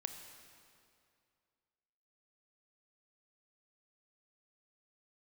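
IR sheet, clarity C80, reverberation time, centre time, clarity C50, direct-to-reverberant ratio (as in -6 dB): 8.0 dB, 2.4 s, 39 ms, 7.0 dB, 6.0 dB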